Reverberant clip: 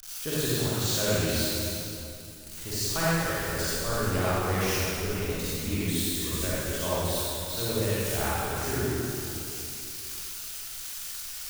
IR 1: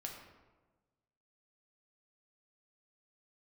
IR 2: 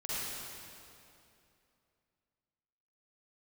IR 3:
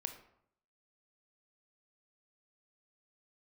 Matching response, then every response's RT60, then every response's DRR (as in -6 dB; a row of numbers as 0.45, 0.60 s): 2; 1.3, 2.7, 0.70 s; -0.5, -10.0, 6.5 dB